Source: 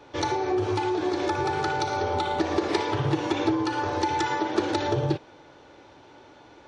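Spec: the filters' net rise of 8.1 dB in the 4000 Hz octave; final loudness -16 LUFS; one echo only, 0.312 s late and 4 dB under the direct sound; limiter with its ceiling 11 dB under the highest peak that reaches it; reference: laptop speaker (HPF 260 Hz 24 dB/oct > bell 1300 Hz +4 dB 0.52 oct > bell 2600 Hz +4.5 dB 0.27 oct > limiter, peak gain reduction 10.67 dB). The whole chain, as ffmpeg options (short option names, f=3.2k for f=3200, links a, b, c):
-af "equalizer=f=4k:t=o:g=9,alimiter=limit=-18dB:level=0:latency=1,highpass=f=260:w=0.5412,highpass=f=260:w=1.3066,equalizer=f=1.3k:t=o:w=0.52:g=4,equalizer=f=2.6k:t=o:w=0.27:g=4.5,aecho=1:1:312:0.631,volume=17dB,alimiter=limit=-8dB:level=0:latency=1"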